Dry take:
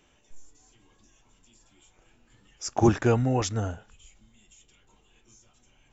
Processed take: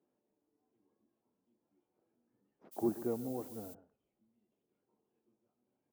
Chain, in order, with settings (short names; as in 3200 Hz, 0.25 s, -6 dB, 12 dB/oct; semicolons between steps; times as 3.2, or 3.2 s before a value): tracing distortion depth 0.28 ms; ladder band-pass 330 Hz, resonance 40%; bell 280 Hz -6.5 dB 0.61 oct; echo 0.134 s -15.5 dB; 2.71–3.73 added noise violet -54 dBFS